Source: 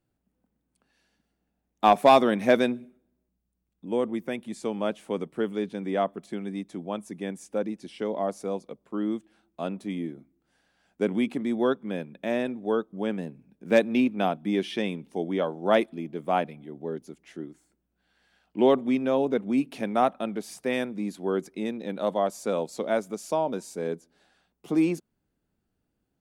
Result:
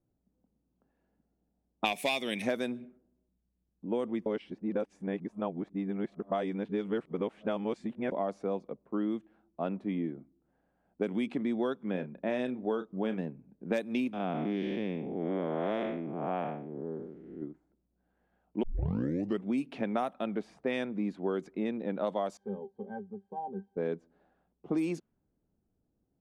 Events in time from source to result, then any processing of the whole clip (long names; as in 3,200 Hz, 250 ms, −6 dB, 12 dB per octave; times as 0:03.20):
0:01.84–0:02.42: high shelf with overshoot 1,800 Hz +9 dB, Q 3
0:04.26–0:08.12: reverse
0:11.91–0:13.21: double-tracking delay 32 ms −11 dB
0:14.13–0:17.42: spectrum smeared in time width 261 ms
0:18.63: tape start 0.83 s
0:22.37–0:23.77: resonances in every octave G, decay 0.12 s
whole clip: low-pass that shuts in the quiet parts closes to 750 Hz, open at −18 dBFS; downward compressor 16 to 1, threshold −27 dBFS; high-shelf EQ 6,500 Hz +6.5 dB